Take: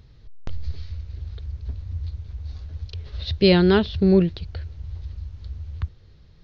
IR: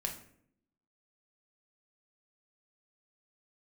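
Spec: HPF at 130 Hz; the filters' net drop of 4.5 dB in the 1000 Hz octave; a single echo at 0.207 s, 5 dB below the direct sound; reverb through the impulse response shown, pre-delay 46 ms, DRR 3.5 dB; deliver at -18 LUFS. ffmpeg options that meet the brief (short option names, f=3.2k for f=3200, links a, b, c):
-filter_complex "[0:a]highpass=130,equalizer=f=1k:t=o:g=-6.5,aecho=1:1:207:0.562,asplit=2[a][b];[1:a]atrim=start_sample=2205,adelay=46[c];[b][c]afir=irnorm=-1:irlink=0,volume=-4.5dB[d];[a][d]amix=inputs=2:normalize=0"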